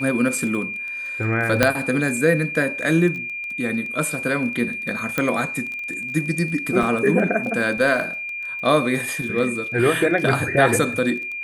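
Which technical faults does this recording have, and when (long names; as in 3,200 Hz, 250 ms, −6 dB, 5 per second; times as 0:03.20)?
surface crackle 16 per second −28 dBFS
whistle 2,400 Hz −27 dBFS
0:01.63: click 0 dBFS
0:05.18: click −7 dBFS
0:06.83: drop-out 2.5 ms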